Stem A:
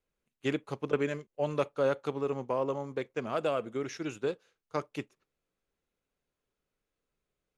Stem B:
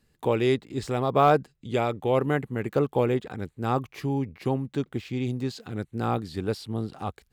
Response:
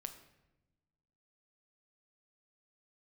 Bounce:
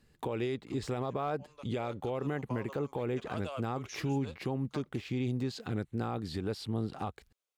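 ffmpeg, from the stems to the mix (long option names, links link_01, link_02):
-filter_complex "[0:a]highpass=910,equalizer=frequency=1700:width=1.3:gain=-8.5,afade=type=in:start_time=1.62:duration=0.52:silence=0.223872[link_01];[1:a]highshelf=frequency=8000:gain=-6,acompressor=threshold=-23dB:ratio=6,volume=1.5dB[link_02];[link_01][link_02]amix=inputs=2:normalize=0,alimiter=level_in=1dB:limit=-24dB:level=0:latency=1:release=188,volume=-1dB"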